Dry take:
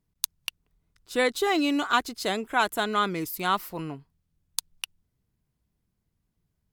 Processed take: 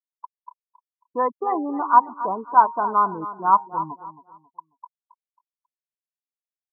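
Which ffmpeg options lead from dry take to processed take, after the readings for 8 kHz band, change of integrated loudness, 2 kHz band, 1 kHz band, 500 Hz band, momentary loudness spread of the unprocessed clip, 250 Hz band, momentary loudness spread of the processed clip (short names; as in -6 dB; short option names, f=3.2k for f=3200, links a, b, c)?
under -40 dB, +6.0 dB, -8.0 dB, +10.5 dB, -0.5 dB, 15 LU, -2.5 dB, 12 LU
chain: -filter_complex "[0:a]lowpass=f=990:t=q:w=10,bandreject=f=133.4:t=h:w=4,bandreject=f=266.8:t=h:w=4,bandreject=f=400.2:t=h:w=4,bandreject=f=533.6:t=h:w=4,bandreject=f=667:t=h:w=4,bandreject=f=800.4:t=h:w=4,bandreject=f=933.8:t=h:w=4,bandreject=f=1.0672k:t=h:w=4,afftfilt=real='re*gte(hypot(re,im),0.1)':imag='im*gte(hypot(re,im),0.1)':win_size=1024:overlap=0.75,asplit=2[a][b];[b]aecho=0:1:271|542|813:0.2|0.0599|0.018[c];[a][c]amix=inputs=2:normalize=0,volume=-3dB"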